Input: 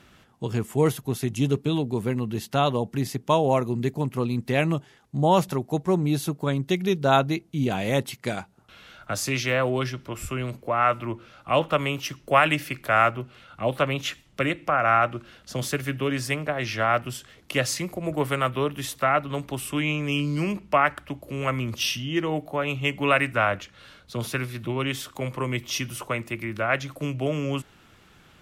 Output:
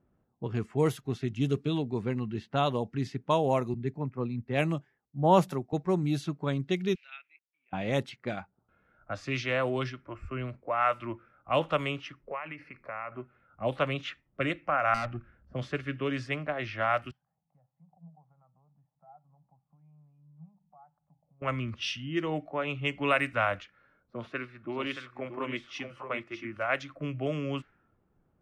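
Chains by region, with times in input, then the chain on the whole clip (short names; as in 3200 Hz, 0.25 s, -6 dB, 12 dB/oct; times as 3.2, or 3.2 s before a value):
3.74–5.73 bell 4000 Hz -3 dB 2.7 oct + three-band expander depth 70%
6.95–7.73 level-crossing sampler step -39 dBFS + ladder band-pass 2700 Hz, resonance 70%
12.27–13.12 ripple EQ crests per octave 0.88, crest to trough 7 dB + compressor, threshold -27 dBFS
14.94–15.54 tone controls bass +9 dB, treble -6 dB + tube stage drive 23 dB, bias 0.55
17.11–21.42 compressor 3:1, threshold -37 dBFS + double band-pass 360 Hz, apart 2.3 oct
23.6–26.69 bell 63 Hz -8 dB 2.1 oct + echo 0.627 s -7 dB
whole clip: low-pass opened by the level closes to 670 Hz, open at -18 dBFS; spectral noise reduction 9 dB; high shelf 12000 Hz -10.5 dB; gain -5 dB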